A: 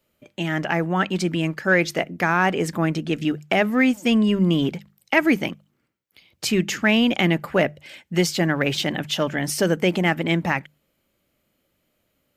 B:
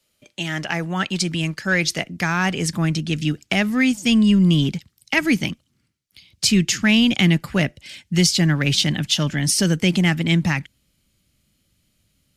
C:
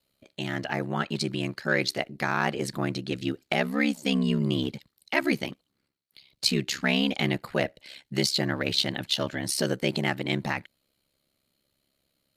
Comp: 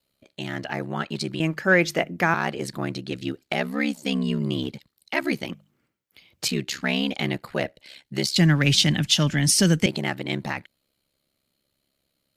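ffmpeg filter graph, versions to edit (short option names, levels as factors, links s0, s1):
-filter_complex "[0:a]asplit=2[s0][s1];[2:a]asplit=4[s2][s3][s4][s5];[s2]atrim=end=1.402[s6];[s0]atrim=start=1.398:end=2.342[s7];[s3]atrim=start=2.338:end=5.492[s8];[s1]atrim=start=5.488:end=6.482[s9];[s4]atrim=start=6.478:end=8.362[s10];[1:a]atrim=start=8.358:end=9.862[s11];[s5]atrim=start=9.858[s12];[s6][s7]acrossfade=d=0.004:c1=hsin:c2=hsin[s13];[s13][s8]acrossfade=d=0.004:c1=hsin:c2=hsin[s14];[s14][s9]acrossfade=d=0.004:c1=hsin:c2=hsin[s15];[s15][s10]acrossfade=d=0.004:c1=hsin:c2=hsin[s16];[s16][s11]acrossfade=d=0.004:c1=hsin:c2=hsin[s17];[s17][s12]acrossfade=d=0.004:c1=hsin:c2=hsin"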